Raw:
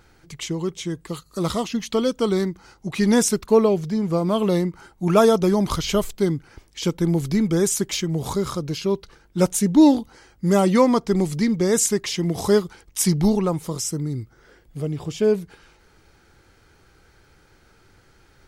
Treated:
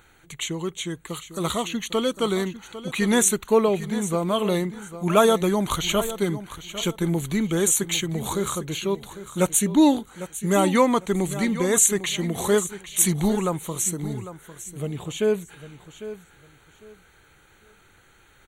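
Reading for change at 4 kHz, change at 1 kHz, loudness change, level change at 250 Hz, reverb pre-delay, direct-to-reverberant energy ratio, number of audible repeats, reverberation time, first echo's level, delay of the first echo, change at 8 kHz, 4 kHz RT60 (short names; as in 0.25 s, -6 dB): +1.0 dB, +0.5 dB, -1.5 dB, -3.5 dB, none, none, 2, none, -13.5 dB, 0.801 s, +3.5 dB, none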